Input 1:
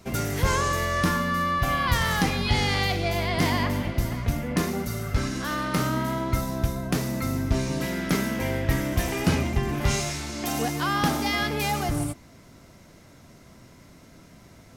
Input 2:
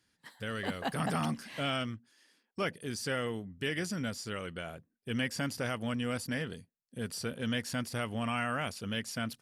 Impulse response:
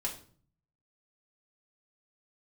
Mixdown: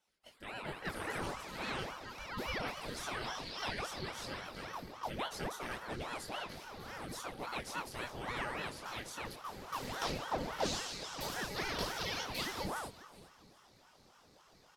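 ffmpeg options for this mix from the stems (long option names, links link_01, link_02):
-filter_complex "[0:a]equalizer=frequency=4300:width=2.8:gain=12.5,adelay=750,volume=-11dB,asplit=3[link_01][link_02][link_03];[link_02]volume=-15.5dB[link_04];[link_03]volume=-15.5dB[link_05];[1:a]volume=-4.5dB,asplit=4[link_06][link_07][link_08][link_09];[link_07]volume=-9.5dB[link_10];[link_08]volume=-16dB[link_11];[link_09]apad=whole_len=684304[link_12];[link_01][link_12]sidechaincompress=threshold=-55dB:ratio=8:attack=7.4:release=486[link_13];[2:a]atrim=start_sample=2205[link_14];[link_04][link_10]amix=inputs=2:normalize=0[link_15];[link_15][link_14]afir=irnorm=-1:irlink=0[link_16];[link_05][link_11]amix=inputs=2:normalize=0,aecho=0:1:395|790|1185|1580:1|0.29|0.0841|0.0244[link_17];[link_13][link_06][link_16][link_17]amix=inputs=4:normalize=0,aecho=1:1:2.8:0.7,flanger=delay=19.5:depth=4.2:speed=0.59,aeval=exprs='val(0)*sin(2*PI*660*n/s+660*0.85/3.6*sin(2*PI*3.6*n/s))':channel_layout=same"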